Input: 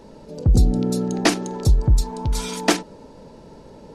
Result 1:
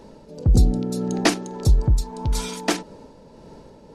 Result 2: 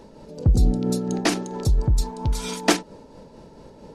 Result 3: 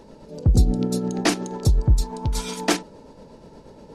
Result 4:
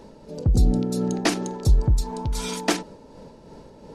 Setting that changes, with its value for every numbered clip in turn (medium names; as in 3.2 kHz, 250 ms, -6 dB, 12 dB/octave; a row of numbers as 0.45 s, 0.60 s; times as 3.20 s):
tremolo, rate: 1.7 Hz, 4.4 Hz, 8.4 Hz, 2.8 Hz